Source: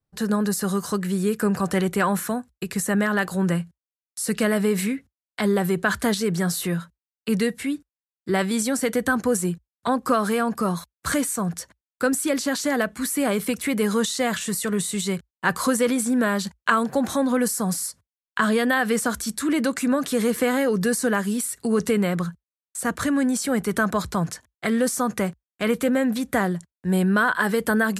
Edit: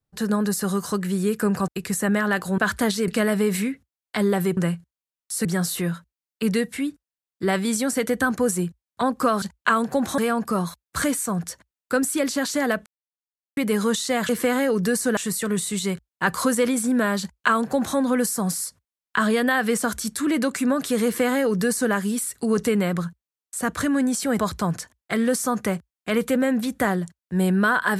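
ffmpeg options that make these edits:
-filter_complex "[0:a]asplit=13[a][b][c][d][e][f][g][h][i][j][k][l][m];[a]atrim=end=1.682[n];[b]atrim=start=2.538:end=3.442[o];[c]atrim=start=5.808:end=6.312[p];[d]atrim=start=4.318:end=5.812[q];[e]atrim=start=3.438:end=4.322[r];[f]atrim=start=6.308:end=10.282[s];[g]atrim=start=16.428:end=17.192[t];[h]atrim=start=10.278:end=12.96,asetpts=PTS-STARTPTS,afade=t=out:st=2.678:d=0.004:c=hsin[u];[i]atrim=start=12.96:end=13.67,asetpts=PTS-STARTPTS,volume=0[v];[j]atrim=start=13.67:end=14.392,asetpts=PTS-STARTPTS,afade=t=in:d=0.004:c=hsin[w];[k]atrim=start=20.268:end=21.152[x];[l]atrim=start=14.388:end=23.612[y];[m]atrim=start=23.918[z];[n][o]acrossfade=d=0.004:c1=hsin:c2=hsin[aa];[aa][p]acrossfade=d=0.004:c1=hsin:c2=hsin[ab];[ab][q]acrossfade=d=0.004:c1=hsin:c2=hsin[ac];[ac][r]acrossfade=d=0.004:c1=hsin:c2=hsin[ad];[ad][s]acrossfade=d=0.004:c1=hsin:c2=hsin[ae];[ae][t]acrossfade=d=0.004:c1=hsin:c2=hsin[af];[u][v][w]concat=n=3:v=0:a=1[ag];[af][ag]acrossfade=d=0.004:c1=hsin:c2=hsin[ah];[ah][x]acrossfade=d=0.004:c1=hsin:c2=hsin[ai];[ai][y]acrossfade=d=0.004:c1=hsin:c2=hsin[aj];[aj][z]acrossfade=d=0.004:c1=hsin:c2=hsin"

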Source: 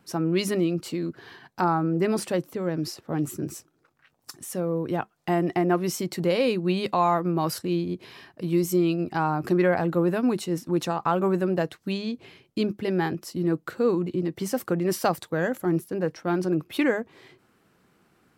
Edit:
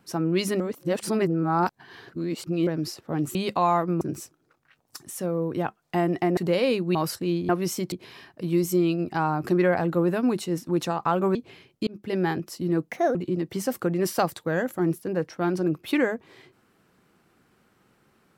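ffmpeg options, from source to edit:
-filter_complex "[0:a]asplit=13[a][b][c][d][e][f][g][h][i][j][k][l][m];[a]atrim=end=0.602[n];[b]atrim=start=0.598:end=2.672,asetpts=PTS-STARTPTS,areverse[o];[c]atrim=start=2.668:end=3.352[p];[d]atrim=start=6.718:end=7.382[q];[e]atrim=start=3.348:end=5.712[r];[f]atrim=start=6.138:end=6.722[s];[g]atrim=start=7.378:end=7.922[t];[h]atrim=start=5.708:end=6.142[u];[i]atrim=start=7.918:end=11.352[v];[j]atrim=start=12.098:end=12.62,asetpts=PTS-STARTPTS,afade=t=out:st=0.518:d=0.004:c=hsin[w];[k]atrim=start=12.62:end=13.654,asetpts=PTS-STARTPTS,afade=t=in:d=0.28[x];[l]atrim=start=13.65:end=14.01,asetpts=PTS-STARTPTS,asetrate=63504,aresample=44100[y];[m]atrim=start=14.006[z];[n][o]acrossfade=d=0.004:c1=hsin:c2=hsin[aa];[aa][p]acrossfade=d=0.004:c1=hsin:c2=hsin[ab];[ab][q]acrossfade=d=0.004:c1=hsin:c2=hsin[ac];[ac][r]acrossfade=d=0.004:c1=hsin:c2=hsin[ad];[ad][s]acrossfade=d=0.004:c1=hsin:c2=hsin[ae];[ae][t]acrossfade=d=0.004:c1=hsin:c2=hsin[af];[af][u]acrossfade=d=0.004:c1=hsin:c2=hsin[ag];[ag][v]acrossfade=d=0.004:c1=hsin:c2=hsin[ah];[w][x]concat=n=2:v=0:a=1[ai];[ah][ai]acrossfade=d=0.004:c1=hsin:c2=hsin[aj];[aj][y]acrossfade=d=0.004:c1=hsin:c2=hsin[ak];[ak][z]acrossfade=d=0.004:c1=hsin:c2=hsin"

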